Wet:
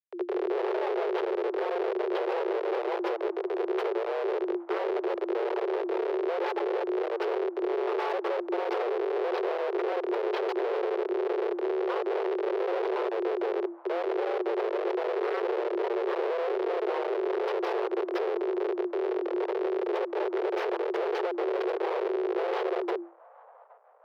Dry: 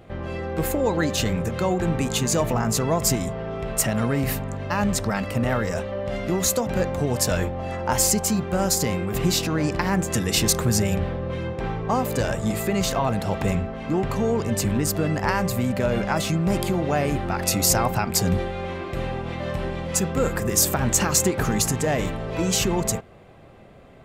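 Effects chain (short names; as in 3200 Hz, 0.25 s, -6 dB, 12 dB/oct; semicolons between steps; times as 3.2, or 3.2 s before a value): bell 7300 Hz -14.5 dB 0.3 oct; compressor 4:1, threshold -24 dBFS, peak gain reduction 7.5 dB; Schmitt trigger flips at -24 dBFS; air absorption 370 m; band-limited delay 0.82 s, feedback 68%, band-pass 510 Hz, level -20 dB; frequency shift +340 Hz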